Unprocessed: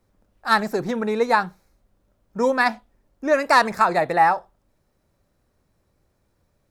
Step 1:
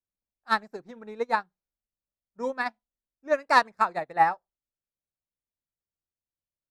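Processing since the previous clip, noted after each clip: treble shelf 9.8 kHz -11.5 dB; upward expansion 2.5:1, over -34 dBFS; trim -2 dB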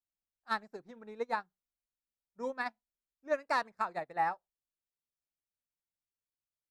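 peak limiter -14 dBFS, peak gain reduction 7.5 dB; trim -7 dB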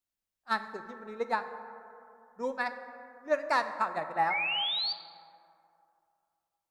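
painted sound rise, 4.30–4.93 s, 2.1–4.7 kHz -35 dBFS; plate-style reverb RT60 2.7 s, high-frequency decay 0.35×, DRR 8.5 dB; trim +3.5 dB

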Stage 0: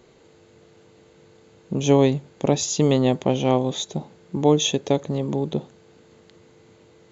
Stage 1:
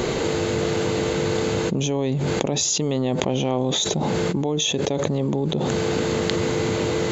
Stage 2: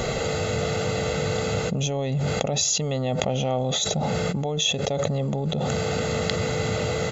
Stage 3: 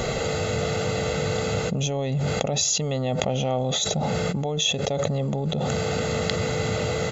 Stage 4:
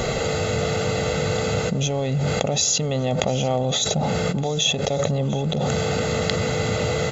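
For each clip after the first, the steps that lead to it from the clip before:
level flattener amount 100%; trim -9.5 dB
comb 1.5 ms, depth 72%; trim -3 dB
no audible change
shuffle delay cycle 1167 ms, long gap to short 1.5:1, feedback 59%, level -19.5 dB; trim +2.5 dB

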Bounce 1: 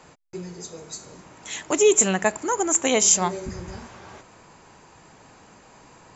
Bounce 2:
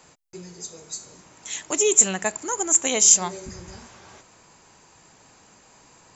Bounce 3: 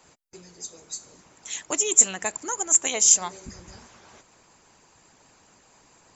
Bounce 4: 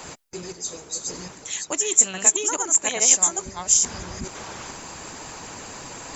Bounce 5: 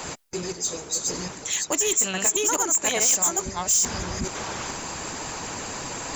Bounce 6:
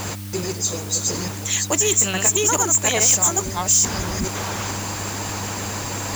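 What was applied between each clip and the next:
treble shelf 3.9 kHz +11.5 dB; trim -5.5 dB
harmonic-percussive split harmonic -10 dB
chunks repeated in reverse 428 ms, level -1 dB; reverse; upward compressor, threshold -22 dBFS; reverse
in parallel at -2.5 dB: peak limiter -12.5 dBFS, peak gain reduction 10 dB; on the sum: saturation -16.5 dBFS, distortion -7 dB
mains buzz 100 Hz, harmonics 3, -37 dBFS -7 dB/octave; in parallel at -4 dB: word length cut 6-bit, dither triangular

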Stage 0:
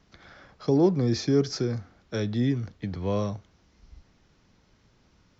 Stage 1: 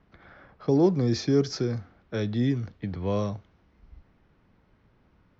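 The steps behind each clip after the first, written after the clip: level-controlled noise filter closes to 2.1 kHz, open at -17.5 dBFS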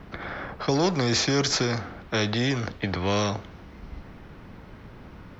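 spectrum-flattening compressor 2:1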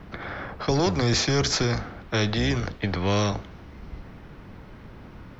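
octave divider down 1 oct, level -4 dB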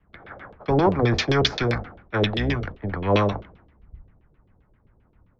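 LFO low-pass saw down 7.6 Hz 390–3500 Hz; three bands expanded up and down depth 100%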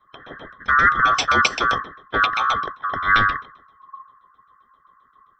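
split-band scrambler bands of 1 kHz; trim +3 dB

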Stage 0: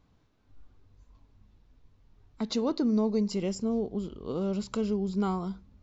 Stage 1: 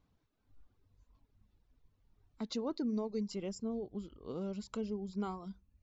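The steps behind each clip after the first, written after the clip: reverb removal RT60 0.7 s; trim -8 dB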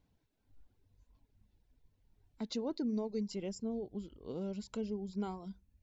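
peaking EQ 1.2 kHz -11.5 dB 0.24 oct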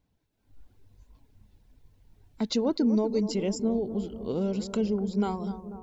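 level rider gain up to 11 dB; on a send: bucket-brigade echo 245 ms, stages 2048, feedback 64%, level -12 dB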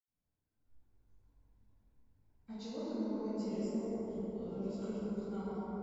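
reverberation RT60 5.5 s, pre-delay 76 ms; trim +5 dB

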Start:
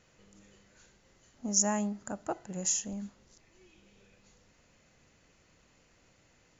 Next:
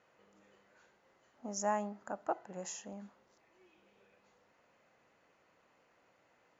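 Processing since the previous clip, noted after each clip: band-pass filter 890 Hz, Q 0.87; trim +1.5 dB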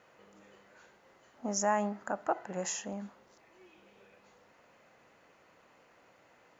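dynamic bell 1.8 kHz, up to +4 dB, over -57 dBFS, Q 1.1; in parallel at +2.5 dB: peak limiter -30.5 dBFS, peak gain reduction 11 dB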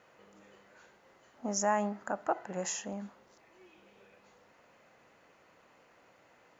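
no audible change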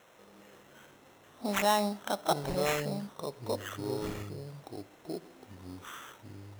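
ever faster or slower copies 260 ms, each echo -6 st, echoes 2, each echo -6 dB; sample-rate reducer 4.7 kHz, jitter 0%; pre-echo 31 ms -16 dB; trim +2.5 dB

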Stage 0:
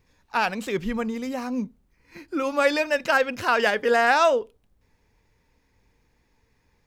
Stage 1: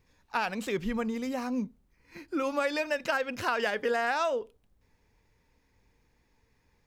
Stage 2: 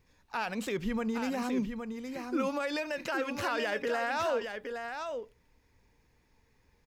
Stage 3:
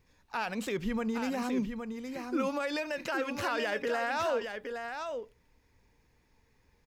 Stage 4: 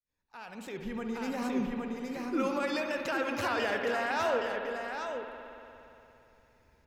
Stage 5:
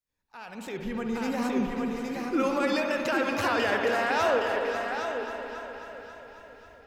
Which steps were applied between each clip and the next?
compression 6:1, threshold -22 dBFS, peak gain reduction 8 dB; trim -3 dB
peak limiter -23.5 dBFS, peak gain reduction 7.5 dB; delay 816 ms -6.5 dB
no audible change
fade-in on the opening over 1.74 s; spring tank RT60 3.1 s, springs 58 ms, chirp 70 ms, DRR 4 dB
level rider gain up to 3 dB; echo whose repeats swap between lows and highs 271 ms, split 1.2 kHz, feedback 72%, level -8 dB; trim +1.5 dB

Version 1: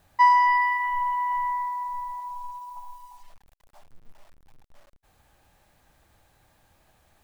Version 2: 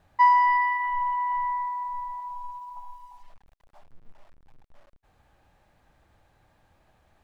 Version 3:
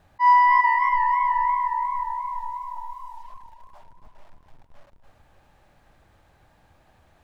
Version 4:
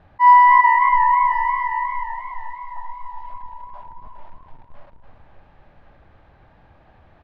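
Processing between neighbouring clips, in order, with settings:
low-pass 2.4 kHz 6 dB/octave
slow attack 110 ms; modulated delay 281 ms, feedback 51%, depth 116 cents, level -8 dB; trim +4 dB
distance through air 300 m; delay 1071 ms -11.5 dB; trim +7 dB

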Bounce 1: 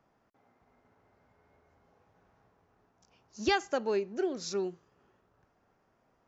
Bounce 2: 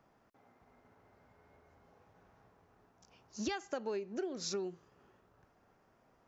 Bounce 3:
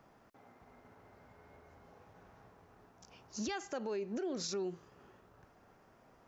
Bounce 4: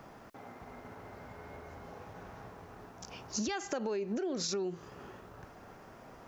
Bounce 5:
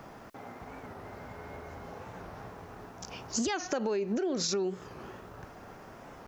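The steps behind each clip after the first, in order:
compression 8:1, threshold -37 dBFS, peak gain reduction 14 dB; trim +2 dB
peak limiter -36.5 dBFS, peak gain reduction 10.5 dB; trim +5.5 dB
compression 6:1, threshold -44 dBFS, peak gain reduction 9 dB; trim +11.5 dB
warped record 45 rpm, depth 160 cents; trim +4 dB

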